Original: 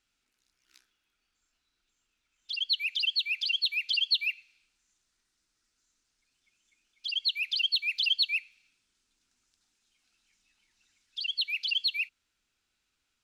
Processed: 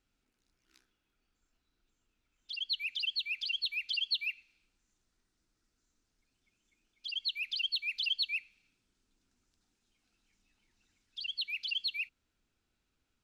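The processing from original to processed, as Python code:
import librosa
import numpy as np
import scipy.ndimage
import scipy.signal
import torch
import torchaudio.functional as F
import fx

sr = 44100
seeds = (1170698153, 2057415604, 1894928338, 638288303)

y = fx.tilt_shelf(x, sr, db=7.0, hz=890.0)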